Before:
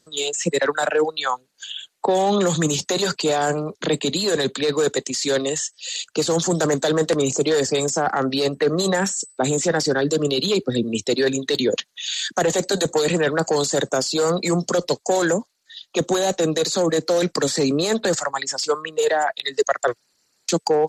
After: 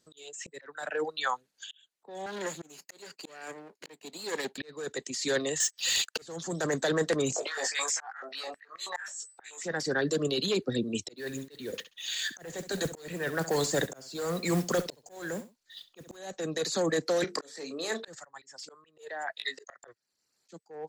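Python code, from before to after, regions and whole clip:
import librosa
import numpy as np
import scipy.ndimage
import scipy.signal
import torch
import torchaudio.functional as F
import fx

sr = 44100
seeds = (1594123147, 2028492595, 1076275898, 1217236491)

y = fx.chain(x, sr, fx.lower_of_two(delay_ms=0.43),
    fx.highpass(hz=300.0, slope=12),
    fx.upward_expand(threshold_db=-32.0, expansion=1.5), at=(2.26, 4.58))
y = fx.chain(y, sr, fx.highpass(hz=410.0, slope=12),
    fx.leveller(passes=3), at=(5.6, 6.22))
y = fx.chain(y, sr, fx.over_compress(threshold_db=-21.0, ratio=-0.5),
    fx.doubler(ms=18.0, db=-3),
    fx.filter_held_highpass(hz=9.3, low_hz=650.0, high_hz=2100.0), at=(7.36, 9.63))
y = fx.chain(y, sr, fx.low_shelf(hz=110.0, db=10.5),
    fx.mod_noise(seeds[0], snr_db=18),
    fx.echo_feedback(ms=67, feedback_pct=17, wet_db=-15.0), at=(11.16, 16.17))
y = fx.chain(y, sr, fx.highpass(hz=350.0, slope=12),
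    fx.hum_notches(base_hz=50, count=9),
    fx.doubler(ms=31.0, db=-11.0), at=(17.24, 18.08))
y = fx.chain(y, sr, fx.highpass(hz=510.0, slope=6),
    fx.doubler(ms=19.0, db=-4), at=(19.36, 19.76))
y = fx.dynamic_eq(y, sr, hz=1800.0, q=2.6, threshold_db=-41.0, ratio=4.0, max_db=7)
y = fx.auto_swell(y, sr, attack_ms=645.0)
y = y * librosa.db_to_amplitude(-8.5)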